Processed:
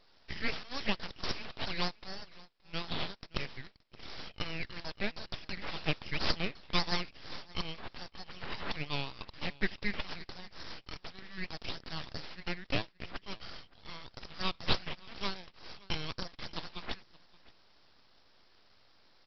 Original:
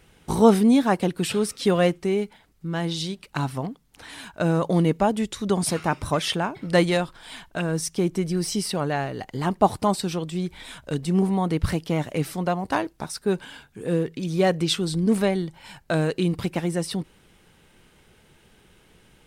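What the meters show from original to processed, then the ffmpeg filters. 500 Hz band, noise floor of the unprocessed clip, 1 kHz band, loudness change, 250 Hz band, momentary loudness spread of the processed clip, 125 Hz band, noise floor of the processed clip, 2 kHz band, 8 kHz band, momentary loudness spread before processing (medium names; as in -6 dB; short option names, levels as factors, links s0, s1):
-21.0 dB, -58 dBFS, -15.5 dB, -14.5 dB, -21.0 dB, 13 LU, -18.0 dB, -64 dBFS, -6.5 dB, -24.0 dB, 12 LU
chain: -af "highpass=f=1100:w=0.5412,highpass=f=1100:w=1.3066,aresample=11025,aeval=exprs='abs(val(0))':c=same,aresample=44100,aecho=1:1:572:0.075"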